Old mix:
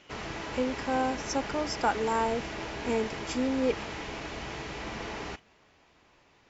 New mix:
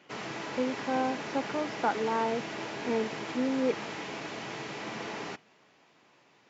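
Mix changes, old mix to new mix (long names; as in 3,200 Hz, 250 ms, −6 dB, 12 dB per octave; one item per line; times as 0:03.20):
speech: add high-frequency loss of the air 390 metres
master: add high-pass filter 130 Hz 24 dB per octave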